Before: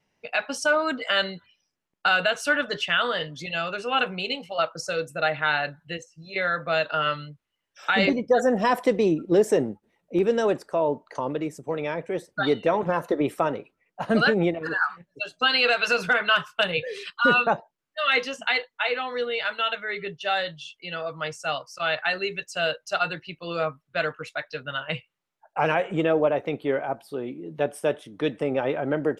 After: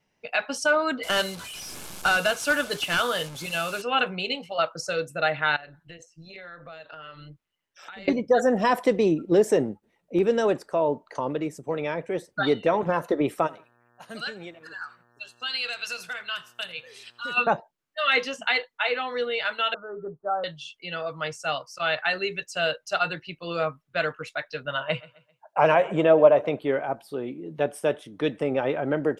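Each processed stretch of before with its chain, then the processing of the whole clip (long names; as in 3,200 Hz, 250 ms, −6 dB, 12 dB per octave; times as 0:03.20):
0:01.03–0:03.82: linear delta modulator 64 kbit/s, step −33.5 dBFS + high-shelf EQ 8,500 Hz +6.5 dB + notch filter 1,900 Hz, Q 7.8
0:05.56–0:08.08: amplitude modulation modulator 170 Hz, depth 30% + downward compressor, threshold −40 dBFS
0:13.46–0:17.36: first-order pre-emphasis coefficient 0.9 + hum with harmonics 120 Hz, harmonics 15, −64 dBFS −1 dB per octave + repeating echo 84 ms, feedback 31%, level −21.5 dB
0:19.74–0:20.44: Butterworth low-pass 1,400 Hz 96 dB per octave + parametric band 120 Hz −5.5 dB 1.3 octaves
0:24.65–0:26.59: high-pass filter 59 Hz + hollow resonant body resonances 620/990 Hz, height 8 dB, ringing for 20 ms + repeating echo 131 ms, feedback 38%, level −22 dB
whole clip: no processing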